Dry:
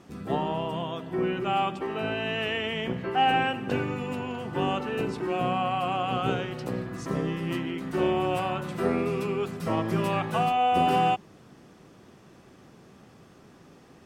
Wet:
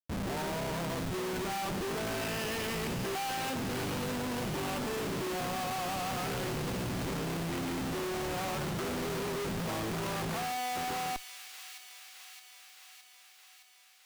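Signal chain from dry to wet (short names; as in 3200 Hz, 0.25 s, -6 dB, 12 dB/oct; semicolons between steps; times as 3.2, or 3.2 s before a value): Schmitt trigger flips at -38.5 dBFS; on a send: thin delay 0.616 s, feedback 67%, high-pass 2500 Hz, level -6 dB; on the sum: gain -6 dB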